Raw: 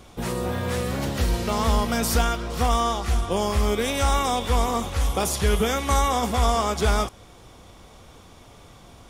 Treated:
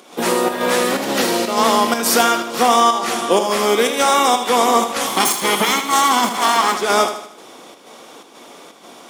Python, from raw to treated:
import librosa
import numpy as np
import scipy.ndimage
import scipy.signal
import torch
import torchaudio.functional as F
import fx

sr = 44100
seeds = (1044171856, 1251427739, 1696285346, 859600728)

p1 = fx.lower_of_two(x, sr, delay_ms=0.94, at=(5.07, 6.74))
p2 = scipy.signal.sosfilt(scipy.signal.butter(4, 250.0, 'highpass', fs=sr, output='sos'), p1)
p3 = fx.rider(p2, sr, range_db=3, speed_s=0.5)
p4 = p2 + (p3 * librosa.db_to_amplitude(3.0))
p5 = fx.overload_stage(p4, sr, gain_db=9.0, at=(3.68, 4.34))
p6 = fx.volume_shaper(p5, sr, bpm=124, per_beat=1, depth_db=-9, release_ms=121.0, shape='slow start')
p7 = p6 + fx.echo_feedback(p6, sr, ms=78, feedback_pct=46, wet_db=-9.5, dry=0)
y = p7 * librosa.db_to_amplitude(3.0)